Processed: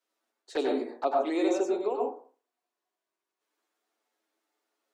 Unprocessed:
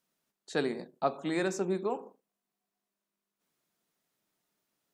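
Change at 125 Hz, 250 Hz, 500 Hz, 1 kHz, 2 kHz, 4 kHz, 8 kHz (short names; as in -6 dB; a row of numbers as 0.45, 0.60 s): under -20 dB, +4.0 dB, +5.0 dB, +5.0 dB, -3.5 dB, +0.5 dB, -1.5 dB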